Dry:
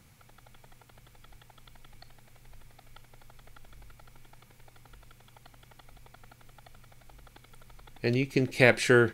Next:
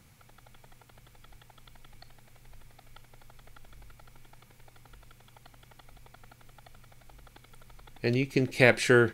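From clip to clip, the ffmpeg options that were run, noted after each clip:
-af anull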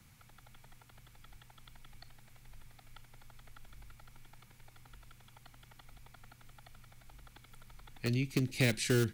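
-filter_complex "[0:a]acrossover=split=390|620|6300[a][b][c][d];[b]acrusher=bits=4:mix=0:aa=0.000001[e];[a][e][c][d]amix=inputs=4:normalize=0,acrossover=split=300|3000[f][g][h];[g]acompressor=threshold=-44dB:ratio=2.5[i];[f][i][h]amix=inputs=3:normalize=0,volume=-2dB"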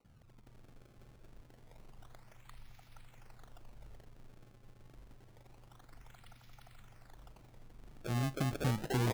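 -filter_complex "[0:a]acrossover=split=380|1600[a][b][c];[a]adelay=40[d];[c]adelay=470[e];[d][b][e]amix=inputs=3:normalize=0,acrusher=samples=26:mix=1:aa=0.000001:lfo=1:lforange=41.6:lforate=0.27,asoftclip=type=tanh:threshold=-23dB"

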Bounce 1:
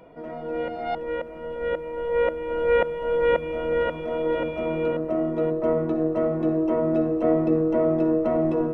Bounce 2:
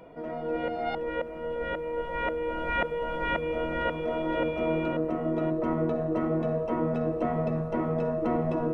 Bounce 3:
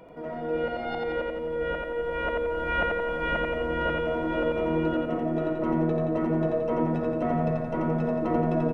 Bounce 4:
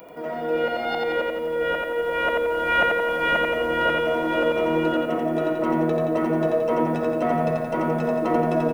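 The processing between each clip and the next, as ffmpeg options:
-af "afftfilt=real='re*lt(hypot(re,im),0.501)':imag='im*lt(hypot(re,im),0.501)':win_size=1024:overlap=0.75"
-af "aecho=1:1:87|174|261|348|435|522|609|696:0.708|0.389|0.214|0.118|0.0648|0.0356|0.0196|0.0108"
-af "aemphasis=mode=production:type=bsi,volume=6.5dB"

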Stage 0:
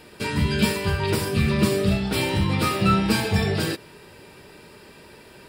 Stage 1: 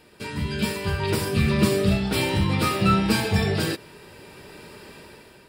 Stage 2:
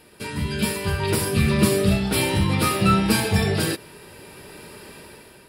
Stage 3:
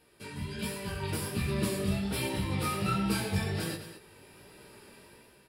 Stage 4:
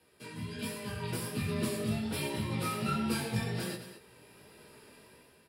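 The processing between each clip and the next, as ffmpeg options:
-af "dynaudnorm=f=330:g=5:m=12dB,volume=-6.5dB"
-af "equalizer=f=11k:w=2.2:g=10,volume=1.5dB"
-filter_complex "[0:a]flanger=delay=15:depth=6.7:speed=1.3,asplit=2[a][b];[b]aecho=0:1:90.38|218.7:0.282|0.251[c];[a][c]amix=inputs=2:normalize=0,volume=-9dB"
-af "afreqshift=22,volume=-2.5dB"

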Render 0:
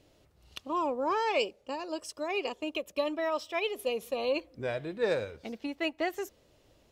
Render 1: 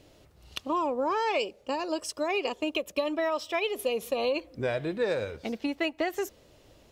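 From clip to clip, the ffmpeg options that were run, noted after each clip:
-af "acompressor=threshold=-31dB:ratio=6,volume=6.5dB"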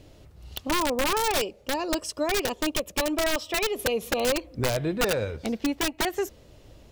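-af "aeval=exprs='(mod(11.2*val(0)+1,2)-1)/11.2':c=same,lowshelf=f=180:g=9.5,volume=2dB"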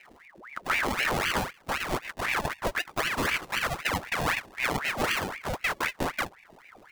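-filter_complex "[0:a]acrossover=split=150[a][b];[b]acrusher=samples=39:mix=1:aa=0.000001:lfo=1:lforange=23.4:lforate=0.52[c];[a][c]amix=inputs=2:normalize=0,aeval=exprs='val(0)*sin(2*PI*1300*n/s+1300*0.8/3.9*sin(2*PI*3.9*n/s))':c=same"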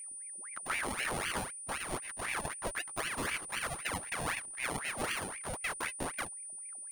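-af "aeval=exprs='val(0)+0.02*sin(2*PI*9300*n/s)':c=same,anlmdn=0.0398,volume=-8.5dB"

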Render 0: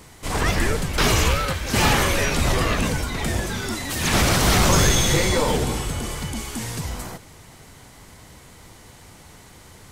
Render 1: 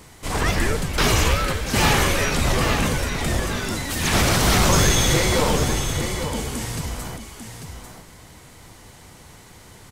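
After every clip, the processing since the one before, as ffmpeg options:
-af "aecho=1:1:844:0.376"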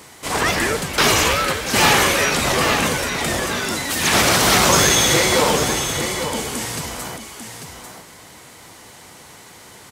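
-af "highpass=f=330:p=1,volume=5.5dB"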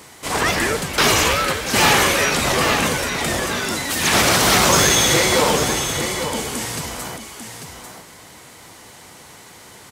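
-af "asoftclip=type=hard:threshold=-7dB"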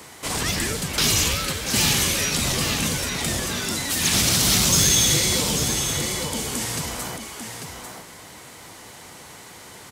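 -filter_complex "[0:a]acrossover=split=250|3000[a][b][c];[b]acompressor=threshold=-31dB:ratio=6[d];[a][d][c]amix=inputs=3:normalize=0"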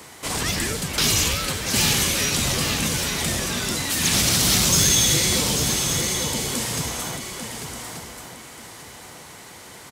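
-af "aecho=1:1:1182:0.316"

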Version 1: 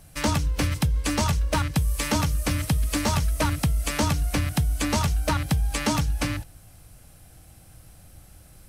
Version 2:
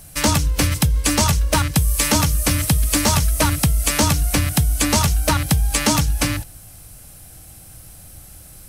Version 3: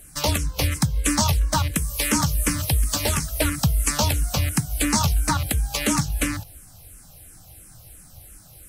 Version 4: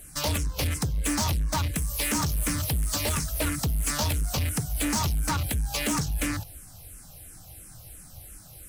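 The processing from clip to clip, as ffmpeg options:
-af "highshelf=f=5.5k:g=9.5,volume=5.5dB"
-filter_complex "[0:a]asplit=2[a][b];[b]afreqshift=-2.9[c];[a][c]amix=inputs=2:normalize=1,volume=-1.5dB"
-af "asoftclip=type=tanh:threshold=-22.5dB"

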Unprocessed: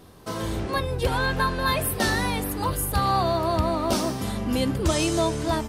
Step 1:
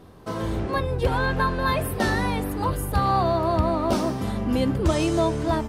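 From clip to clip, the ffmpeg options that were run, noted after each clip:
-af "highshelf=f=2.9k:g=-10.5,volume=2dB"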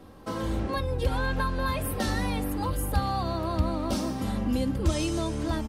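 -filter_complex "[0:a]aecho=1:1:3.7:0.43,acrossover=split=180|3000[a][b][c];[b]acompressor=threshold=-29dB:ratio=3[d];[a][d][c]amix=inputs=3:normalize=0,volume=-1.5dB"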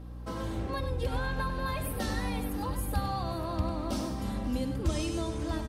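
-filter_complex "[0:a]aeval=exprs='val(0)+0.0141*(sin(2*PI*60*n/s)+sin(2*PI*2*60*n/s)/2+sin(2*PI*3*60*n/s)/3+sin(2*PI*4*60*n/s)/4+sin(2*PI*5*60*n/s)/5)':c=same,asplit=2[a][b];[b]aecho=0:1:98|538:0.355|0.133[c];[a][c]amix=inputs=2:normalize=0,volume=-5dB"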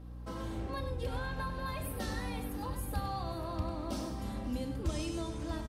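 -filter_complex "[0:a]asplit=2[a][b];[b]adelay=33,volume=-12dB[c];[a][c]amix=inputs=2:normalize=0,volume=-5dB"

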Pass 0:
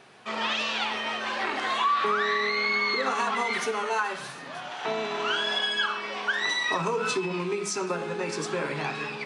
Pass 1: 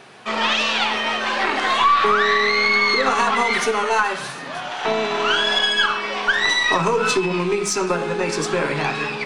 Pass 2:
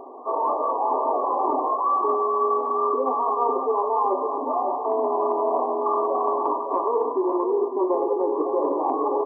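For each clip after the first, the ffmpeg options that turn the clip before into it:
-af "aeval=exprs='0.211*(cos(1*acos(clip(val(0)/0.211,-1,1)))-cos(1*PI/2))+0.0106*(cos(4*acos(clip(val(0)/0.211,-1,1)))-cos(4*PI/2))':c=same,volume=8.5dB"
-af "afftfilt=real='re*between(b*sr/4096,240,1200)':imag='im*between(b*sr/4096,240,1200)':win_size=4096:overlap=0.75,areverse,acompressor=threshold=-27dB:ratio=20,areverse,aecho=1:1:555|1110|1665|2220:0.422|0.143|0.0487|0.0166,volume=7.5dB"

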